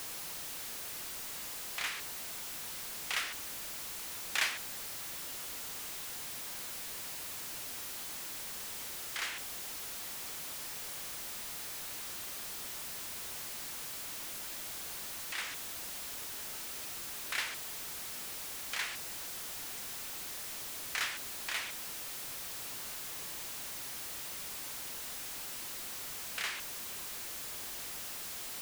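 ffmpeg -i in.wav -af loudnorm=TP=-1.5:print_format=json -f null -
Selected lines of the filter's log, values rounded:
"input_i" : "-38.6",
"input_tp" : "-18.6",
"input_lra" : "2.8",
"input_thresh" : "-48.6",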